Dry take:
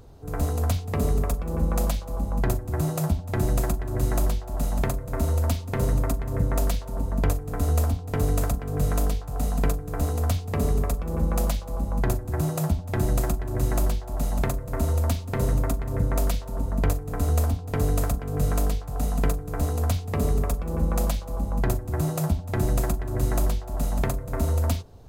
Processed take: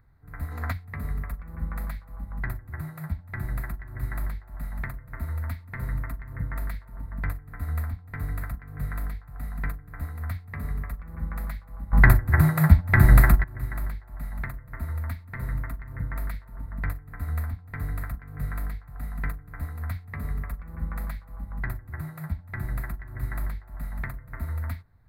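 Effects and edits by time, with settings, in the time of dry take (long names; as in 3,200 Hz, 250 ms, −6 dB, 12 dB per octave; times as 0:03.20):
0:00.52–0:00.73: gain on a spectral selection 220–7,600 Hz +8 dB
0:11.93–0:13.44: clip gain +11 dB
whole clip: drawn EQ curve 140 Hz 0 dB, 290 Hz −8 dB, 430 Hz −15 dB, 730 Hz −8 dB, 2,000 Hz +12 dB, 2,900 Hz −15 dB, 4,200 Hz −6 dB, 6,100 Hz −23 dB, 12,000 Hz −3 dB; expander for the loud parts 1.5 to 1, over −30 dBFS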